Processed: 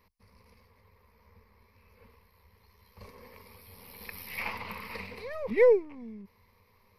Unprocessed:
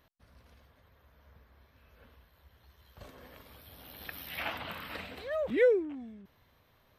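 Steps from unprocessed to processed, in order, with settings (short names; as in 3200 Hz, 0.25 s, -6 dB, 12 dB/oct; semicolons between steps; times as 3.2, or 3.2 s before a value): half-wave gain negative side -3 dB; ripple EQ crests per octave 0.87, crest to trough 14 dB; ending taper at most 580 dB/s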